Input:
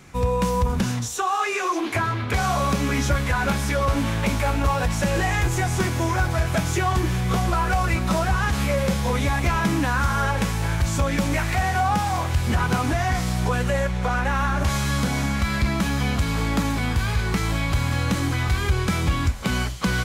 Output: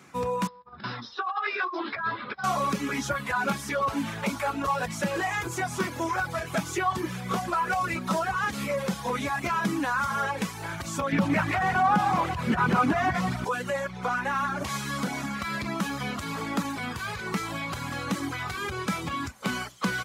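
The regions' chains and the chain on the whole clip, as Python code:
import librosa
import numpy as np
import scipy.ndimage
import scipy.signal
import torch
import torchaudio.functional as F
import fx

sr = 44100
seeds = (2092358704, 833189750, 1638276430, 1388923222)

y = fx.chain(x, sr, fx.doubler(ms=14.0, db=-3),
    fx.over_compress(threshold_db=-24.0, ratio=-0.5),
    fx.cheby_ripple(hz=5300.0, ripple_db=6), at=(0.47, 2.44))
y = fx.chain(y, sr, fx.bass_treble(bass_db=4, treble_db=-10),
    fx.echo_single(ms=175, db=-6.0),
    fx.env_flatten(amount_pct=50), at=(11.12, 13.45))
y = scipy.signal.sosfilt(scipy.signal.cheby1(2, 1.0, 200.0, 'highpass', fs=sr, output='sos'), y)
y = fx.dereverb_blind(y, sr, rt60_s=1.0)
y = fx.peak_eq(y, sr, hz=1200.0, db=4.5, octaves=0.82)
y = y * librosa.db_to_amplitude(-3.5)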